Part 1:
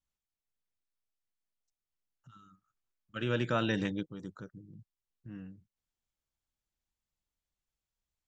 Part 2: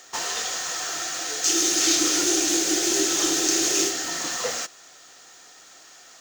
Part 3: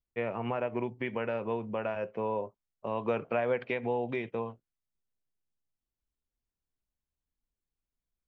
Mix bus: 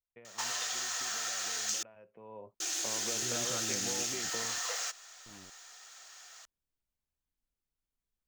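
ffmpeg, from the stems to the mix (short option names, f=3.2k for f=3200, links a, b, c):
-filter_complex "[0:a]acrusher=bits=6:mix=0:aa=0.000001,volume=-12dB[a];[1:a]highpass=810,acrusher=bits=7:mode=log:mix=0:aa=0.000001,acompressor=threshold=-28dB:ratio=6,adelay=250,volume=-4dB,asplit=3[b][c][d];[b]atrim=end=1.83,asetpts=PTS-STARTPTS,afade=t=out:st=1.826:d=0.004:c=hsin[e];[c]atrim=start=1.83:end=2.6,asetpts=PTS-STARTPTS,volume=0[f];[d]atrim=start=2.6,asetpts=PTS-STARTPTS,afade=t=in:d=0.004:c=hsin[g];[e][f][g]concat=n=3:v=0:a=1[h];[2:a]acompressor=threshold=-39dB:ratio=6,volume=-1.5dB,afade=t=in:st=2.18:d=0.31:silence=0.251189[i];[a][h][i]amix=inputs=3:normalize=0"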